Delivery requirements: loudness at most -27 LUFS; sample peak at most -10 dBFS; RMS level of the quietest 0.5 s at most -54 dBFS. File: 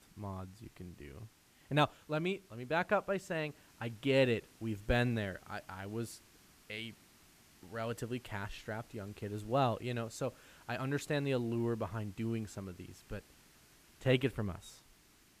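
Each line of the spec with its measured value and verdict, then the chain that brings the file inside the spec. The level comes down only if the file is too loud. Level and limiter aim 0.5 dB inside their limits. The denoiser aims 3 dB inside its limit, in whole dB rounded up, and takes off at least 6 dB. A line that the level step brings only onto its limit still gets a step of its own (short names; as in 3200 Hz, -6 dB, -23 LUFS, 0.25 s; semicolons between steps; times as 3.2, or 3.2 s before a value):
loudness -37.0 LUFS: OK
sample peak -16.0 dBFS: OK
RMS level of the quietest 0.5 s -65 dBFS: OK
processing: none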